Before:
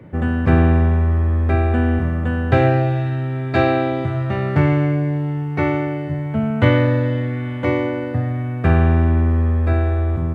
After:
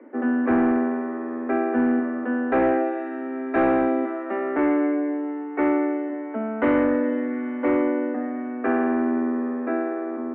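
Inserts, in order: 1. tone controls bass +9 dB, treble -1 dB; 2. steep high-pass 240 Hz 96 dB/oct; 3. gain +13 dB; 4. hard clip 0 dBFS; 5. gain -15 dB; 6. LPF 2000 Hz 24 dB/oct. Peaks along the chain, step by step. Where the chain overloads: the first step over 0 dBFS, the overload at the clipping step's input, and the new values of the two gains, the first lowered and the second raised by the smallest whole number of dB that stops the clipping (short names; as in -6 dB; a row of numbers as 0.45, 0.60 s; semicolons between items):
+4.0, -3.5, +9.5, 0.0, -15.0, -13.5 dBFS; step 1, 9.5 dB; step 3 +3 dB, step 5 -5 dB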